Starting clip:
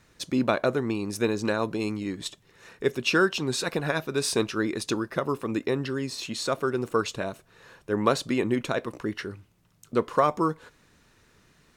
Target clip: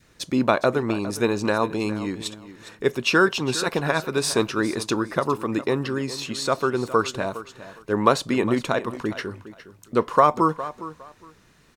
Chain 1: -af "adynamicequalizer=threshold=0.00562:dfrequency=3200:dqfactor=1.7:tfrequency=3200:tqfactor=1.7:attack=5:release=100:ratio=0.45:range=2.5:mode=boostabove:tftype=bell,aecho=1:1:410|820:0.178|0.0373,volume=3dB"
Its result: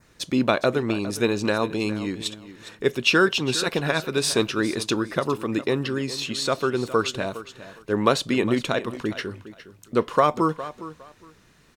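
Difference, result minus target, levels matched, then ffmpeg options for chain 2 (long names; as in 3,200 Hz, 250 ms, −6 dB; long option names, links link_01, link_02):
4,000 Hz band +3.5 dB
-af "adynamicequalizer=threshold=0.00562:dfrequency=970:dqfactor=1.7:tfrequency=970:tqfactor=1.7:attack=5:release=100:ratio=0.45:range=2.5:mode=boostabove:tftype=bell,aecho=1:1:410|820:0.178|0.0373,volume=3dB"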